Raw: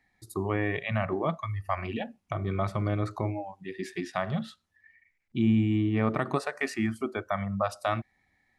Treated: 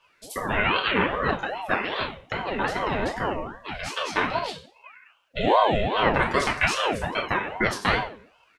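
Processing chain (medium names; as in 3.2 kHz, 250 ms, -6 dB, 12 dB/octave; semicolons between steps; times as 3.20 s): FDN reverb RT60 0.44 s, low-frequency decay 1.3×, high-frequency decay 0.95×, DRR -3 dB; harmony voices -5 st -9 dB; low-pass 2.7 kHz 6 dB/octave; tilt shelf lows -9.5 dB, about 1.3 kHz; ring modulator with a swept carrier 580 Hz, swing 50%, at 2.5 Hz; trim +7.5 dB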